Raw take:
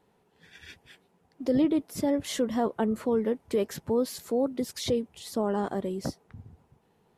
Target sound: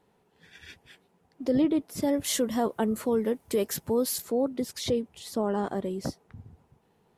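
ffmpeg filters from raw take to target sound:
ffmpeg -i in.wav -filter_complex "[0:a]asettb=1/sr,asplit=3[link_01][link_02][link_03];[link_01]atrim=end=2.024[link_04];[link_02]atrim=start=2.02:end=4.22,asetpts=PTS-STARTPTS,afade=type=in:duration=0.004:curve=qsin,afade=type=out:start_time=2.196:duration=0.004:curve=qsin,aemphasis=mode=production:type=50kf[link_05];[link_03]atrim=start=4.216[link_06];[link_04][link_05]acrossfade=duration=0.004:curve1=hsin:curve2=qsin[link_07];[link_07][link_06]acrossfade=duration=0.004:curve1=qsin:curve2=hsin" out.wav

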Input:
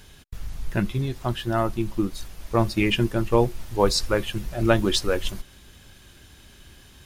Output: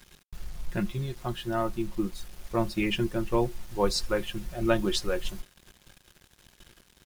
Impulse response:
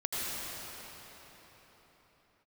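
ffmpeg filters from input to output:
-af "aecho=1:1:5.6:0.54,acrusher=bits=6:mix=0:aa=0.5,volume=-7dB"

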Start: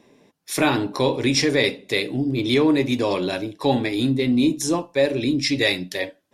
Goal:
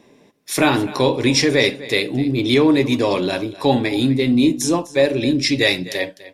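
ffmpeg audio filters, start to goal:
ffmpeg -i in.wav -af "aecho=1:1:252:0.133,volume=3.5dB" out.wav

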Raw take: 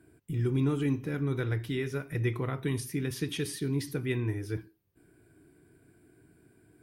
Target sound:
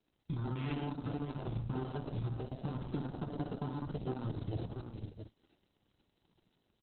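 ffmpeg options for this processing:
ffmpeg -i in.wav -filter_complex "[0:a]lowshelf=frequency=120:gain=3,acrusher=samples=38:mix=1:aa=0.000001,asettb=1/sr,asplit=3[link_01][link_02][link_03];[link_01]atrim=end=0.484[link_04];[link_02]atrim=start=0.48:end=2.86,asetpts=PTS-STARTPTS,afade=type=in:duration=0.004:curve=qsin,afade=type=out:start_time=2.376:duration=0.004:curve=qsin,adynamicequalizer=threshold=0.00224:dfrequency=2600:dqfactor=1.6:tfrequency=2600:tqfactor=1.6:attack=5:release=100:ratio=0.375:range=1.5:mode=boostabove:tftype=bell[link_05];[link_03]atrim=start=2.856[link_06];[link_04][link_05]acrossfade=duration=0.004:curve1=hsin:curve2=qsin[link_07];[link_07][link_06]acrossfade=duration=0.004:curve1=qsin:curve2=hsin,afwtdn=0.02,aecho=1:1:62|113|182|486|672:0.501|0.355|0.211|0.15|0.178,dynaudnorm=framelen=420:gausssize=3:maxgain=4.5dB,lowpass=frequency=6000:width=0.5412,lowpass=frequency=6000:width=1.3066,aexciter=amount=2:drive=9.6:freq=3000,acompressor=threshold=-32dB:ratio=8,volume=-1dB" -ar 48000 -c:a libopus -b:a 6k out.opus

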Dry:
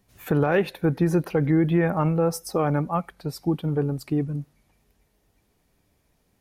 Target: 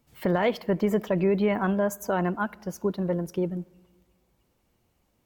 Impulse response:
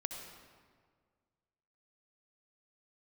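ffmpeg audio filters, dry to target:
-filter_complex "[0:a]asplit=2[link_01][link_02];[1:a]atrim=start_sample=2205,lowpass=2400[link_03];[link_02][link_03]afir=irnorm=-1:irlink=0,volume=-19dB[link_04];[link_01][link_04]amix=inputs=2:normalize=0,asetrate=53802,aresample=44100,volume=-3.5dB"

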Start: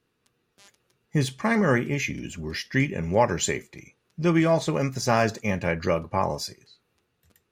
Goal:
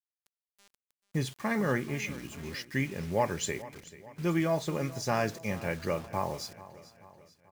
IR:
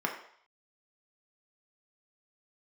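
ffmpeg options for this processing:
-filter_complex "[0:a]acrusher=bits=6:mix=0:aa=0.000001,asplit=2[link_01][link_02];[link_02]aecho=0:1:437|874|1311|1748:0.133|0.0693|0.0361|0.0188[link_03];[link_01][link_03]amix=inputs=2:normalize=0,volume=-7.5dB"

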